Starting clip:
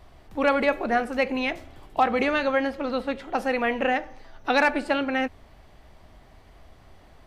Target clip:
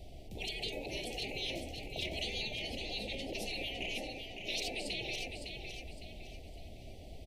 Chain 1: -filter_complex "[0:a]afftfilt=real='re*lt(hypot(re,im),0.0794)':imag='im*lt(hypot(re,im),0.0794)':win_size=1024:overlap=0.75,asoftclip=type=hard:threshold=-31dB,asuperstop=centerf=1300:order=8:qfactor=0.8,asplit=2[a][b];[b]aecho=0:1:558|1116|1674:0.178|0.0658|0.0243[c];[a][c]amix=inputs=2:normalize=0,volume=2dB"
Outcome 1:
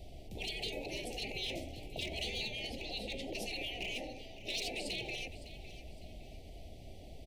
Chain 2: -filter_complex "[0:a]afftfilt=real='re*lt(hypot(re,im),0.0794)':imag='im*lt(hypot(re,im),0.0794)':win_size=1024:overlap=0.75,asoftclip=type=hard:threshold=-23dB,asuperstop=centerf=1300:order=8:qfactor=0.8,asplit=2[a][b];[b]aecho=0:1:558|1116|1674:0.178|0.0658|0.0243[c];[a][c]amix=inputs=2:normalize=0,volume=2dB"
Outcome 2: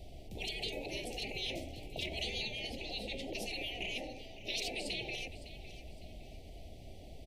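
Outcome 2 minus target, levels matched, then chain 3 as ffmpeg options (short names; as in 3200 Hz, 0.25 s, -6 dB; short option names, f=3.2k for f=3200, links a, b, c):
echo-to-direct -8.5 dB
-filter_complex "[0:a]afftfilt=real='re*lt(hypot(re,im),0.0794)':imag='im*lt(hypot(re,im),0.0794)':win_size=1024:overlap=0.75,asoftclip=type=hard:threshold=-23dB,asuperstop=centerf=1300:order=8:qfactor=0.8,asplit=2[a][b];[b]aecho=0:1:558|1116|1674|2232:0.473|0.175|0.0648|0.024[c];[a][c]amix=inputs=2:normalize=0,volume=2dB"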